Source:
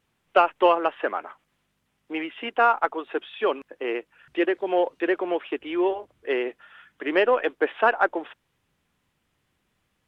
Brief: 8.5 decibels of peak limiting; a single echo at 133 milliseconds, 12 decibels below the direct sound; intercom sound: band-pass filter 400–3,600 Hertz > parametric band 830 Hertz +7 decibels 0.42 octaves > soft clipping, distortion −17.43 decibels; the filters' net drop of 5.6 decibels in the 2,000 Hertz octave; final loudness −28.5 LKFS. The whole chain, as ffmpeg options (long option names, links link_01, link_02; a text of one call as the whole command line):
ffmpeg -i in.wav -af "equalizer=frequency=2000:width_type=o:gain=-8,alimiter=limit=-15.5dB:level=0:latency=1,highpass=400,lowpass=3600,equalizer=frequency=830:width_type=o:width=0.42:gain=7,aecho=1:1:133:0.251,asoftclip=threshold=-17dB,volume=1dB" out.wav